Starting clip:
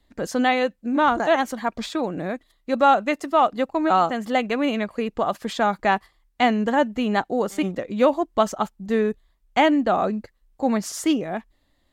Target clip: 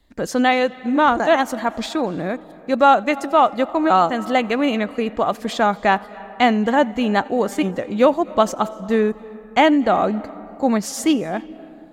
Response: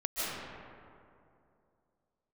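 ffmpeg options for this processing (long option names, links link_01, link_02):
-filter_complex "[0:a]asplit=2[link_01][link_02];[1:a]atrim=start_sample=2205,adelay=88[link_03];[link_02][link_03]afir=irnorm=-1:irlink=0,volume=-25.5dB[link_04];[link_01][link_04]amix=inputs=2:normalize=0,volume=3.5dB"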